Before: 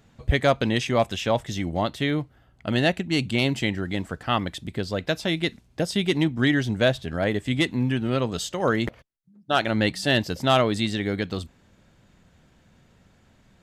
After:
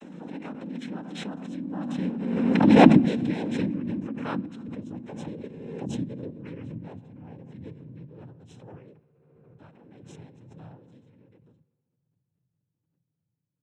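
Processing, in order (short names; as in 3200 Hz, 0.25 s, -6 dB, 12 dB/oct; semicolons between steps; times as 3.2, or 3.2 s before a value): vocoder on a gliding note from B3, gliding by -12 st; Doppler pass-by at 2.91, 8 m/s, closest 1.7 m; low shelf 190 Hz +11.5 dB; noise vocoder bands 8; Butterworth band-stop 4600 Hz, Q 4.9; reverb RT60 1.5 s, pre-delay 21 ms, DRR 14.5 dB; backwards sustainer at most 30 dB/s; gain +2 dB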